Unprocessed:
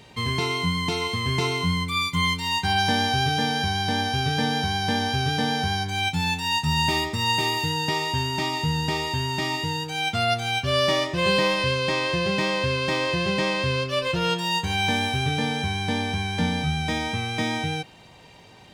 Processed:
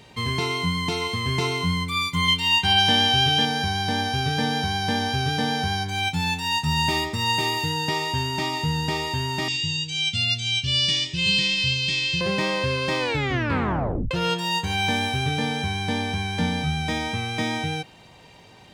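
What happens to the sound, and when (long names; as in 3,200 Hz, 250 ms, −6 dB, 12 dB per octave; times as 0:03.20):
0:02.28–0:03.45: parametric band 3,000 Hz +11.5 dB 0.43 octaves
0:09.48–0:12.21: drawn EQ curve 160 Hz 0 dB, 650 Hz −22 dB, 1,300 Hz −21 dB, 2,800 Hz +6 dB, 8,200 Hz +4 dB, 12,000 Hz −30 dB
0:12.99: tape stop 1.12 s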